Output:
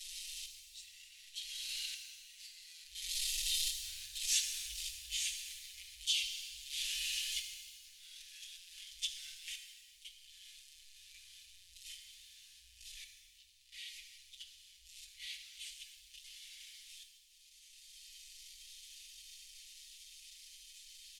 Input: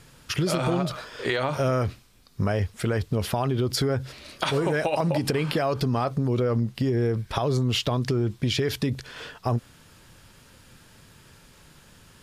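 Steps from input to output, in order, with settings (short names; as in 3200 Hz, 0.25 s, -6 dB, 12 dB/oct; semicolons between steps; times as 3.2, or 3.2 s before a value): zero-crossing step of -25 dBFS; Doppler pass-by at 2.66, 36 m/s, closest 3.6 m; compressor 6:1, threshold -47 dBFS, peak gain reduction 24 dB; comb 3 ms, depth 84%; auto swell 0.709 s; inverse Chebyshev band-stop 220–1100 Hz, stop band 70 dB; low shelf 200 Hz -10.5 dB; fixed phaser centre 400 Hz, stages 4; formant shift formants +4 st; bell 5000 Hz +3.5 dB 2.3 oct; speed mistake 78 rpm record played at 45 rpm; shimmer reverb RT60 1.5 s, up +7 st, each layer -8 dB, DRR 4.5 dB; gain +13 dB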